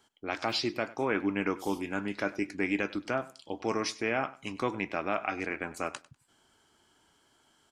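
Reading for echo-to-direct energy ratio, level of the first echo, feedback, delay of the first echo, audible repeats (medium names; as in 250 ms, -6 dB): -19.5 dB, -19.5 dB, 20%, 98 ms, 2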